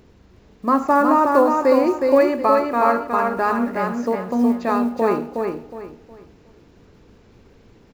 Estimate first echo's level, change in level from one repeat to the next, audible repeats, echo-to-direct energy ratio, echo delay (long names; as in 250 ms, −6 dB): −4.0 dB, −10.5 dB, 3, −3.5 dB, 365 ms